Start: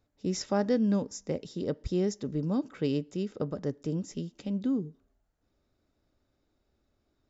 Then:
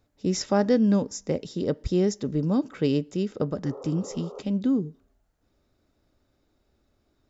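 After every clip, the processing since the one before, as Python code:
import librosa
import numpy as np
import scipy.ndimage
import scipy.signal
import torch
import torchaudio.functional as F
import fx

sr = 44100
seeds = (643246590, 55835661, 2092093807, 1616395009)

y = fx.spec_repair(x, sr, seeds[0], start_s=3.67, length_s=0.72, low_hz=390.0, high_hz=1400.0, source='before')
y = y * 10.0 ** (5.5 / 20.0)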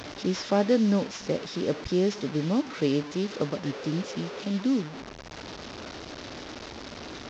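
y = fx.delta_mod(x, sr, bps=32000, step_db=-31.5)
y = fx.highpass(y, sr, hz=180.0, slope=6)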